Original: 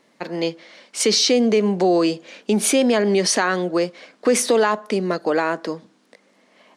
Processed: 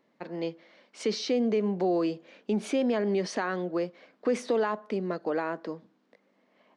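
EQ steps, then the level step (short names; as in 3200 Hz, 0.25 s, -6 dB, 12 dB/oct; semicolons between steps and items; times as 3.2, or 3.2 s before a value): tape spacing loss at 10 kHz 30 dB; high shelf 5600 Hz +10 dB; -8.0 dB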